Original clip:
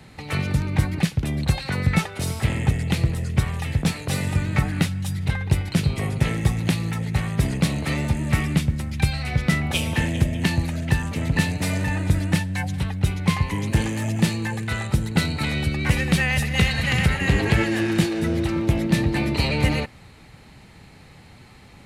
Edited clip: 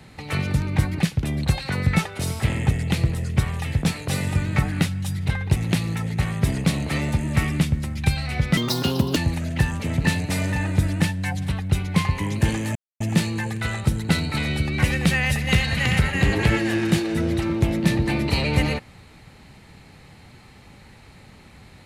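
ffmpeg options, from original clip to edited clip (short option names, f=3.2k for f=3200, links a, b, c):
-filter_complex "[0:a]asplit=5[a][b][c][d][e];[a]atrim=end=5.562[f];[b]atrim=start=6.518:end=9.534[g];[c]atrim=start=9.53:end=10.48,asetpts=PTS-STARTPTS,asetrate=70560,aresample=44100,atrim=end_sample=26184,asetpts=PTS-STARTPTS[h];[d]atrim=start=10.476:end=14.07,asetpts=PTS-STARTPTS,afade=t=out:st=3.59:d=0.004:c=hsin,apad=pad_dur=0.25[i];[e]atrim=start=14.07,asetpts=PTS-STARTPTS,afade=t=in:d=0.004:c=hsin[j];[f][g]acrossfade=d=0.004:c1=hsin:c2=hsin[k];[k][h]acrossfade=d=0.004:c1=hsin:c2=hsin[l];[i][j]concat=n=2:v=0:a=1[m];[l][m]acrossfade=d=0.004:c1=hsin:c2=hsin"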